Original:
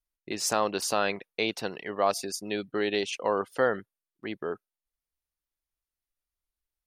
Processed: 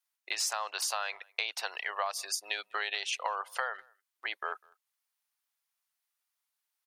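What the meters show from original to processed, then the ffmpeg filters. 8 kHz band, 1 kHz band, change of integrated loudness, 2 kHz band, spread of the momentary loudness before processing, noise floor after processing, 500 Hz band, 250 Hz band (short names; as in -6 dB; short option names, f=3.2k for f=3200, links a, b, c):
-1.0 dB, -4.5 dB, -4.5 dB, -0.5 dB, 10 LU, under -85 dBFS, -15.5 dB, under -25 dB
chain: -filter_complex "[0:a]highpass=f=770:w=0.5412,highpass=f=770:w=1.3066,acompressor=threshold=-36dB:ratio=16,asplit=2[a][b];[b]adelay=200,highpass=300,lowpass=3.4k,asoftclip=type=hard:threshold=-31.5dB,volume=-27dB[c];[a][c]amix=inputs=2:normalize=0,volume=7dB"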